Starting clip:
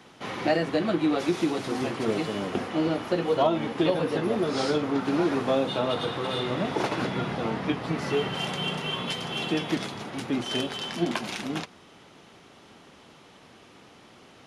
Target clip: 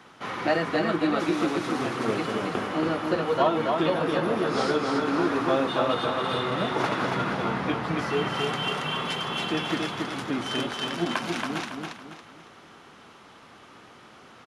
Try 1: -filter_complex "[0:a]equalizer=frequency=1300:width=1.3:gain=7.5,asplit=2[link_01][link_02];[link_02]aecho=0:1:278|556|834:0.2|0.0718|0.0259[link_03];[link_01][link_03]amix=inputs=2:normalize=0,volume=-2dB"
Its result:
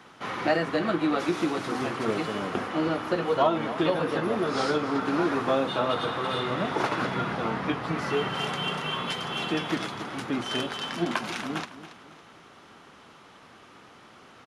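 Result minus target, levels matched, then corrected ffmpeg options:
echo-to-direct −10 dB
-filter_complex "[0:a]equalizer=frequency=1300:width=1.3:gain=7.5,asplit=2[link_01][link_02];[link_02]aecho=0:1:278|556|834|1112|1390:0.631|0.227|0.0818|0.0294|0.0106[link_03];[link_01][link_03]amix=inputs=2:normalize=0,volume=-2dB"

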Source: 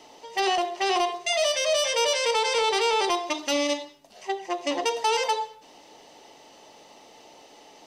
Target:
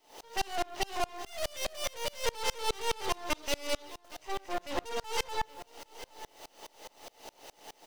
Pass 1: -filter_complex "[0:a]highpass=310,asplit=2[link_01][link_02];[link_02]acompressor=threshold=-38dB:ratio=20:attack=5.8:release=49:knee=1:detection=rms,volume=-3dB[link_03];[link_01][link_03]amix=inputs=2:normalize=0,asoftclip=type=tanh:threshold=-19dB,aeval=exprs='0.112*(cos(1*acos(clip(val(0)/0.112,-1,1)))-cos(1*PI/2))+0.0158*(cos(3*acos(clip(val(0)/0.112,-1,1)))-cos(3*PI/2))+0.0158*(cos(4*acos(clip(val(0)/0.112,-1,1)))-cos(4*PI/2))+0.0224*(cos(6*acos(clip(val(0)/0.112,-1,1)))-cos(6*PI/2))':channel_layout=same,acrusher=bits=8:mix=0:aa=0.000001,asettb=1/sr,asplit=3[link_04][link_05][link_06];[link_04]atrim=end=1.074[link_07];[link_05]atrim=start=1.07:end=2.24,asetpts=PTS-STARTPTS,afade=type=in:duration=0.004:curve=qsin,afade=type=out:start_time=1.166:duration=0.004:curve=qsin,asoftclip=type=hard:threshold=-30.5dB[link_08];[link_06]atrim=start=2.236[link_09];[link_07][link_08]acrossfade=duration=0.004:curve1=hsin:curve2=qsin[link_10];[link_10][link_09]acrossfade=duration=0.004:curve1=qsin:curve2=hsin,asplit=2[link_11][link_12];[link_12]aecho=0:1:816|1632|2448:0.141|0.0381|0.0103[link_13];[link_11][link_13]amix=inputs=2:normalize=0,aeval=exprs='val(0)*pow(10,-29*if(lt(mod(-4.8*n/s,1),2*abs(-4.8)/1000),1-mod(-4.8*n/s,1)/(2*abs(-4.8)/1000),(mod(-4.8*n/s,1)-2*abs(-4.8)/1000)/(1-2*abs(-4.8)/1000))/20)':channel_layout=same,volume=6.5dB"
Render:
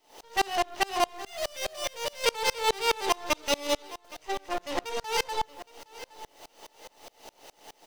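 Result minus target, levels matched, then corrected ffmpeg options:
soft clipping: distortion −8 dB
-filter_complex "[0:a]highpass=310,asplit=2[link_01][link_02];[link_02]acompressor=threshold=-38dB:ratio=20:attack=5.8:release=49:knee=1:detection=rms,volume=-3dB[link_03];[link_01][link_03]amix=inputs=2:normalize=0,asoftclip=type=tanh:threshold=-27dB,aeval=exprs='0.112*(cos(1*acos(clip(val(0)/0.112,-1,1)))-cos(1*PI/2))+0.0158*(cos(3*acos(clip(val(0)/0.112,-1,1)))-cos(3*PI/2))+0.0158*(cos(4*acos(clip(val(0)/0.112,-1,1)))-cos(4*PI/2))+0.0224*(cos(6*acos(clip(val(0)/0.112,-1,1)))-cos(6*PI/2))':channel_layout=same,acrusher=bits=8:mix=0:aa=0.000001,asettb=1/sr,asplit=3[link_04][link_05][link_06];[link_04]atrim=end=1.074[link_07];[link_05]atrim=start=1.07:end=2.24,asetpts=PTS-STARTPTS,afade=type=in:duration=0.004:curve=qsin,afade=type=out:start_time=1.166:duration=0.004:curve=qsin,asoftclip=type=hard:threshold=-30.5dB[link_08];[link_06]atrim=start=2.236[link_09];[link_07][link_08]acrossfade=duration=0.004:curve1=hsin:curve2=qsin[link_10];[link_10][link_09]acrossfade=duration=0.004:curve1=qsin:curve2=hsin,asplit=2[link_11][link_12];[link_12]aecho=0:1:816|1632|2448:0.141|0.0381|0.0103[link_13];[link_11][link_13]amix=inputs=2:normalize=0,aeval=exprs='val(0)*pow(10,-29*if(lt(mod(-4.8*n/s,1),2*abs(-4.8)/1000),1-mod(-4.8*n/s,1)/(2*abs(-4.8)/1000),(mod(-4.8*n/s,1)-2*abs(-4.8)/1000)/(1-2*abs(-4.8)/1000))/20)':channel_layout=same,volume=6.5dB"

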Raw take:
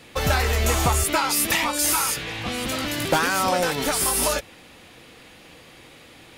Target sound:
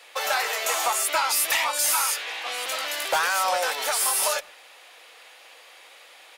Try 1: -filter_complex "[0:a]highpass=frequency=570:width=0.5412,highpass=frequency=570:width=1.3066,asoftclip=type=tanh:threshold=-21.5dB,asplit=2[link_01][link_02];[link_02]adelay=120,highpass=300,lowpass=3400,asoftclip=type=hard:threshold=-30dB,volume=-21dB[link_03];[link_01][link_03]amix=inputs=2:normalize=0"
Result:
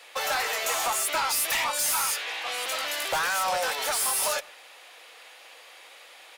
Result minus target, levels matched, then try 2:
soft clipping: distortion +12 dB
-filter_complex "[0:a]highpass=frequency=570:width=0.5412,highpass=frequency=570:width=1.3066,asoftclip=type=tanh:threshold=-12dB,asplit=2[link_01][link_02];[link_02]adelay=120,highpass=300,lowpass=3400,asoftclip=type=hard:threshold=-30dB,volume=-21dB[link_03];[link_01][link_03]amix=inputs=2:normalize=0"

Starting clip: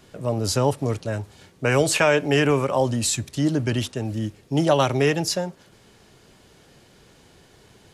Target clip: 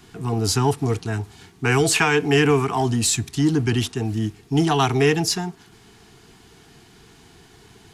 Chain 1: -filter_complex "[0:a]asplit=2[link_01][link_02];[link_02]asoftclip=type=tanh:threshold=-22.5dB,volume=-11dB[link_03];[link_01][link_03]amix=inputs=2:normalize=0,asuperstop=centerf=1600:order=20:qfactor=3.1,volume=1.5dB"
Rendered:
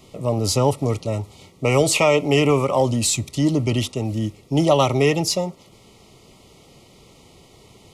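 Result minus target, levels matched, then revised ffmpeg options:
2,000 Hz band −4.0 dB
-filter_complex "[0:a]asplit=2[link_01][link_02];[link_02]asoftclip=type=tanh:threshold=-22.5dB,volume=-11dB[link_03];[link_01][link_03]amix=inputs=2:normalize=0,asuperstop=centerf=560:order=20:qfactor=3.1,volume=1.5dB"

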